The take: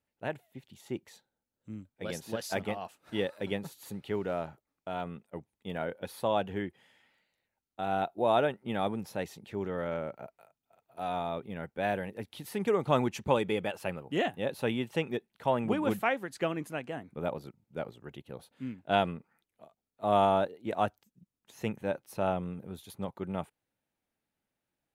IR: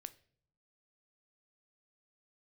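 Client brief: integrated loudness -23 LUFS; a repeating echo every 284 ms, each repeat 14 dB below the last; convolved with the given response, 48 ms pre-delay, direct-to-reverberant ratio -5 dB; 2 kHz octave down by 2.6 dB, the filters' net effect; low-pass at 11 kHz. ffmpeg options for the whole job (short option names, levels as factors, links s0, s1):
-filter_complex "[0:a]lowpass=11000,equalizer=f=2000:t=o:g=-3.5,aecho=1:1:284|568:0.2|0.0399,asplit=2[s0][s1];[1:a]atrim=start_sample=2205,adelay=48[s2];[s1][s2]afir=irnorm=-1:irlink=0,volume=3.35[s3];[s0][s3]amix=inputs=2:normalize=0,volume=1.68"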